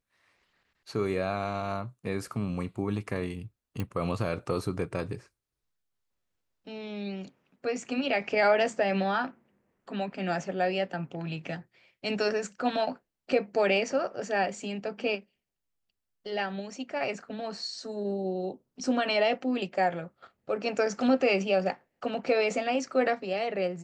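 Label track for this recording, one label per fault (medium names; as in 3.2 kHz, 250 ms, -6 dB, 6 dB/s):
3.800000	3.800000	pop -20 dBFS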